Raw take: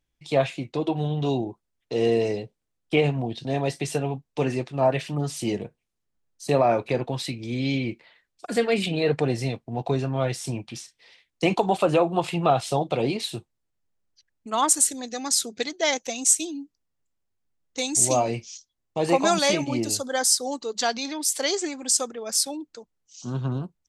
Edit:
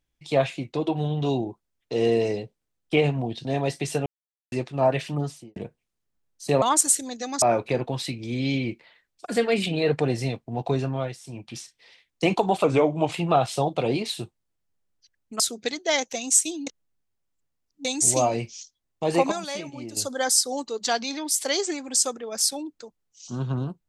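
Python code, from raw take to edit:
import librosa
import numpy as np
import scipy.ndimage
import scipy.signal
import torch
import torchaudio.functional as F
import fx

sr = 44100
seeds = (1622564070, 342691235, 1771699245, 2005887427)

y = fx.studio_fade_out(x, sr, start_s=5.15, length_s=0.41)
y = fx.edit(y, sr, fx.silence(start_s=4.06, length_s=0.46),
    fx.fade_down_up(start_s=10.08, length_s=0.69, db=-11.5, fade_s=0.29),
    fx.speed_span(start_s=11.84, length_s=0.42, speed=0.88),
    fx.move(start_s=14.54, length_s=0.8, to_s=6.62),
    fx.reverse_span(start_s=16.61, length_s=1.18),
    fx.fade_down_up(start_s=19.1, length_s=0.97, db=-11.0, fade_s=0.16, curve='log'), tone=tone)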